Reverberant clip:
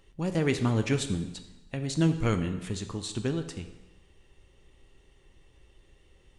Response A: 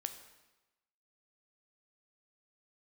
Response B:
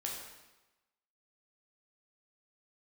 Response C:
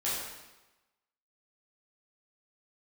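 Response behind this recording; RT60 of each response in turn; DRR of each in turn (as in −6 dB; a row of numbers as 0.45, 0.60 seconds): A; 1.1, 1.1, 1.1 seconds; 7.5, −2.0, −9.5 decibels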